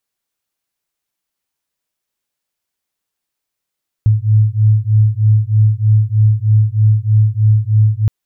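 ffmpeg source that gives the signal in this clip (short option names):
-f lavfi -i "aevalsrc='0.266*(sin(2*PI*106*t)+sin(2*PI*109.2*t))':d=4.02:s=44100"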